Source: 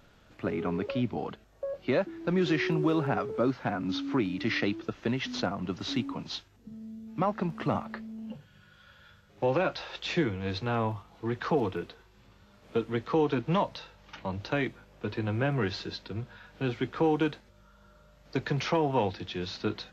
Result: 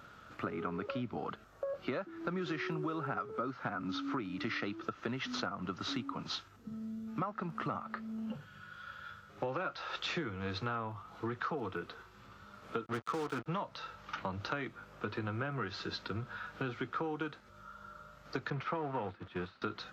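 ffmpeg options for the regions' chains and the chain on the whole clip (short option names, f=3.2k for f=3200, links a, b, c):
-filter_complex "[0:a]asettb=1/sr,asplit=3[a][b][c];[a]atrim=end=12.864[d];[b]atrim=start=12.86:end=13.46,asetpts=PTS-STARTPTS,afade=t=in:d=0.004:c=qsin,afade=t=out:st=0.596:d=0.004:c=qsin,aeval=exprs='val(0)+0.5*0.02*sgn(val(0))':c=same,acrossover=split=5600[e][f];[f]acompressor=threshold=-59dB:ratio=4:attack=1:release=60[g];[e][g]amix=inputs=2:normalize=0,acrusher=bits=4:mix=0:aa=0.5[h];[c]atrim=start=13.456[i];[d][h]acrossfade=d=0.004:c1=hsin:c2=qsin[j];[j][i]acrossfade=d=0.004:c1=qsin:c2=hsin,asettb=1/sr,asplit=3[k][l][m];[k]atrim=end=18.504[n];[l]atrim=start=18.5:end=19.62,asetpts=PTS-STARTPTS,afade=t=in:d=0.004:c=qsin,afade=t=out:st=1.116:d=0.004:c=qsin,aeval=exprs='val(0)+0.5*0.0178*sgn(val(0))':c=same,lowpass=2.6k,agate=range=-33dB:threshold=-28dB:ratio=3:release=100:detection=peak[o];[m]atrim=start=19.616[p];[n][o]acrossfade=d=0.004:c1=hsin:c2=qsin[q];[q][p]acrossfade=d=0.004:c1=qsin:c2=hsin,highpass=66,equalizer=f=1.3k:t=o:w=0.44:g=13.5,acompressor=threshold=-36dB:ratio=6,volume=1dB"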